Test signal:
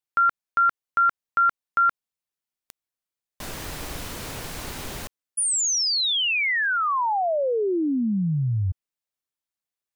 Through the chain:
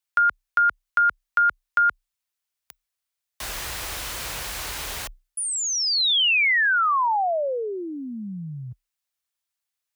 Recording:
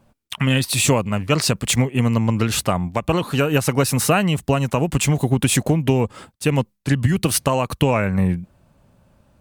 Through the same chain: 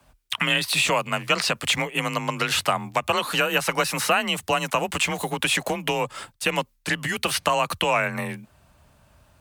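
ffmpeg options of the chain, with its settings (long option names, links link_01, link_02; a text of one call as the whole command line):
ffmpeg -i in.wav -filter_complex "[0:a]acrossover=split=3700[link_01][link_02];[link_02]acompressor=threshold=-34dB:ratio=4:attack=1:release=60[link_03];[link_01][link_03]amix=inputs=2:normalize=0,equalizer=frequency=200:width_type=o:width=2.9:gain=-14.5,acrossover=split=160|410[link_04][link_05][link_06];[link_04]acompressor=threshold=-45dB:ratio=4[link_07];[link_05]acompressor=threshold=-40dB:ratio=4[link_08];[link_06]acompressor=threshold=-23dB:ratio=4[link_09];[link_07][link_08][link_09]amix=inputs=3:normalize=0,afreqshift=31,volume=6dB" out.wav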